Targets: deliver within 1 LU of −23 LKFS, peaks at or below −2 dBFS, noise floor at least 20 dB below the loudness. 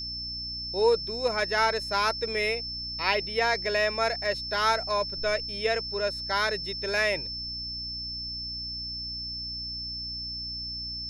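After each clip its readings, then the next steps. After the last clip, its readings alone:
mains hum 60 Hz; hum harmonics up to 300 Hz; level of the hum −42 dBFS; interfering tone 5,300 Hz; level of the tone −33 dBFS; integrated loudness −28.0 LKFS; sample peak −9.0 dBFS; target loudness −23.0 LKFS
→ mains-hum notches 60/120/180/240/300 Hz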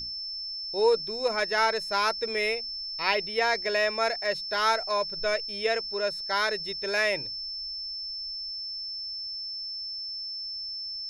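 mains hum none found; interfering tone 5,300 Hz; level of the tone −33 dBFS
→ notch filter 5,300 Hz, Q 30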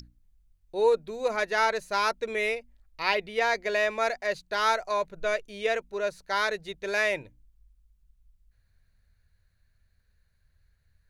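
interfering tone none found; integrated loudness −28.0 LKFS; sample peak −9.5 dBFS; target loudness −23.0 LKFS
→ level +5 dB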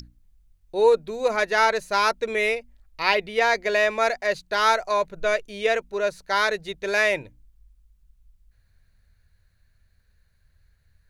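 integrated loudness −23.0 LKFS; sample peak −4.5 dBFS; background noise floor −65 dBFS

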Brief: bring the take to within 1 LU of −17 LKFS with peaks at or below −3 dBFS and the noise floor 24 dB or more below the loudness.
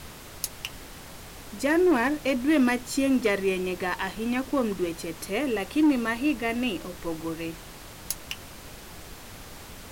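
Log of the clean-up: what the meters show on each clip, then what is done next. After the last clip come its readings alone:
share of clipped samples 0.5%; peaks flattened at −16.0 dBFS; background noise floor −44 dBFS; target noise floor −51 dBFS; integrated loudness −27.0 LKFS; sample peak −16.0 dBFS; target loudness −17.0 LKFS
→ clipped peaks rebuilt −16 dBFS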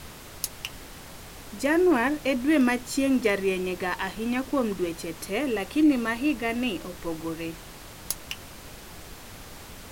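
share of clipped samples 0.0%; background noise floor −44 dBFS; target noise floor −51 dBFS
→ noise reduction from a noise print 7 dB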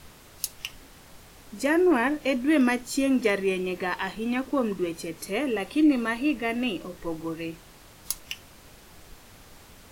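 background noise floor −51 dBFS; integrated loudness −26.5 LKFS; sample peak −8.0 dBFS; target loudness −17.0 LKFS
→ level +9.5 dB
brickwall limiter −3 dBFS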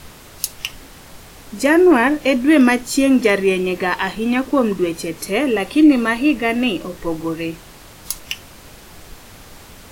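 integrated loudness −17.0 LKFS; sample peak −3.0 dBFS; background noise floor −42 dBFS

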